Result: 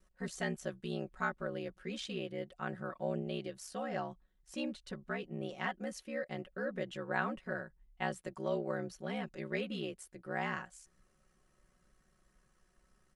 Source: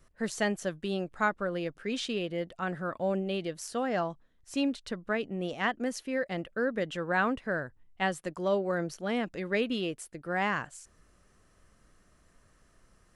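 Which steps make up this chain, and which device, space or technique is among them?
ring-modulated robot voice (ring modulation 33 Hz; comb filter 5.4 ms, depth 77%)
level −7 dB

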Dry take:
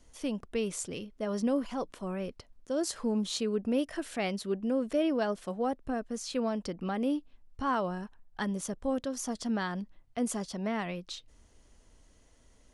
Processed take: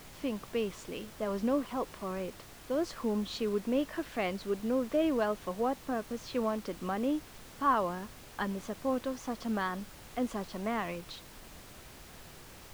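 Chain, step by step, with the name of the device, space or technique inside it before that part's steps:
horn gramophone (band-pass filter 210–3,400 Hz; parametric band 1,100 Hz +6 dB 0.26 octaves; tape wow and flutter; pink noise bed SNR 16 dB)

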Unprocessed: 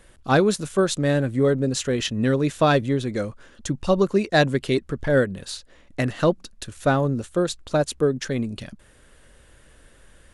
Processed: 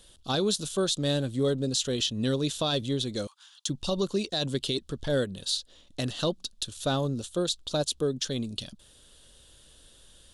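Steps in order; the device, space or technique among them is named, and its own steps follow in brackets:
0:03.27–0:03.68: Butterworth high-pass 820 Hz 72 dB per octave
over-bright horn tweeter (high shelf with overshoot 2,700 Hz +8.5 dB, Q 3; brickwall limiter −11 dBFS, peak gain reduction 12 dB)
level −6.5 dB

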